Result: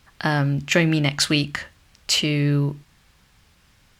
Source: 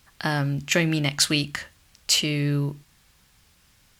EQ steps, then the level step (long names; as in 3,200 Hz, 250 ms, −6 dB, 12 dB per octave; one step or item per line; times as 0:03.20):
high-shelf EQ 5,500 Hz −9.5 dB
+4.0 dB